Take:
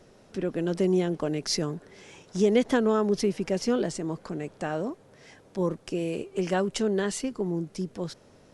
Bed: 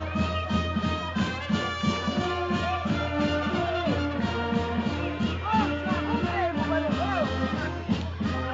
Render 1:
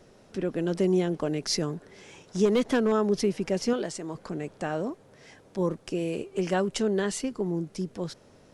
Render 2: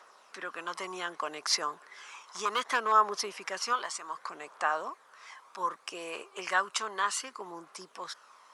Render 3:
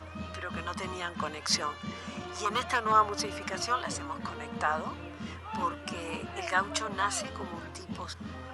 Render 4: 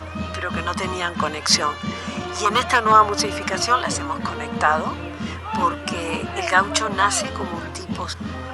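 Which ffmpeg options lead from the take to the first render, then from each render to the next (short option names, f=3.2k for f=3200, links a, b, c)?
-filter_complex "[0:a]asettb=1/sr,asplit=3[a][b][c];[a]atrim=end=2.454[d];[b]atrim=start=2.45:end=2.92,asetpts=PTS-STARTPTS,afade=t=in:d=0.004:c=qsin,afade=t=out:st=0.466:d=0.004:c=qsin,asoftclip=type=hard:threshold=-18dB[e];[c]atrim=start=2.916[f];[d][e]acrossfade=d=0.004:c1=hsin:c2=qsin[g];[g][f]acrossfade=d=0.004:c1=qsin:c2=hsin,asettb=1/sr,asplit=3[h][i][j];[h]atrim=end=3.734[k];[i]atrim=start=3.73:end=4.15,asetpts=PTS-STARTPTS,afade=t=in:d=0.004:c=qsin,afade=t=out:st=0.416:d=0.004:c=qsin,lowshelf=f=360:g=-8.5[l];[j]atrim=start=4.146[m];[k][l]acrossfade=d=0.004:c1=hsin:c2=qsin[n];[n][m]acrossfade=d=0.004:c1=qsin:c2=hsin"
-af "highpass=f=1.1k:t=q:w=4.2,aphaser=in_gain=1:out_gain=1:delay=1:decay=0.36:speed=0.65:type=triangular"
-filter_complex "[1:a]volume=-13.5dB[a];[0:a][a]amix=inputs=2:normalize=0"
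-af "volume=11.5dB,alimiter=limit=-2dB:level=0:latency=1"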